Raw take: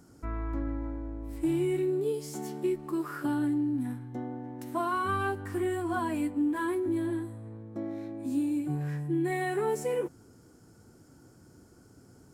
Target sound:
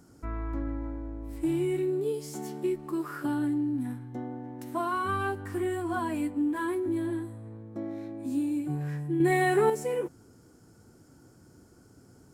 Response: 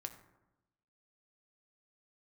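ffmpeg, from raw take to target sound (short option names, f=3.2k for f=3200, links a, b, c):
-filter_complex "[0:a]asettb=1/sr,asplit=3[a][b][c];[a]atrim=end=9.204[d];[b]atrim=start=9.2:end=9.7,asetpts=PTS-STARTPTS,afade=t=in:d=0.004:c=qsin,afade=t=out:st=0.496:d=0.004:c=qsin,acontrast=67[e];[c]atrim=start=9.696[f];[d][e]acrossfade=d=0.004:c1=hsin:c2=qsin[g];[g][f]acrossfade=d=0.004:c1=qsin:c2=hsin"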